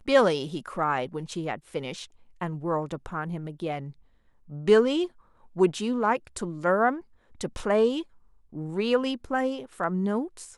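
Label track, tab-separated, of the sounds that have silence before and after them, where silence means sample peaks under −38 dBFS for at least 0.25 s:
2.410000	3.910000	sound
4.510000	5.070000	sound
5.560000	7.000000	sound
7.410000	8.020000	sound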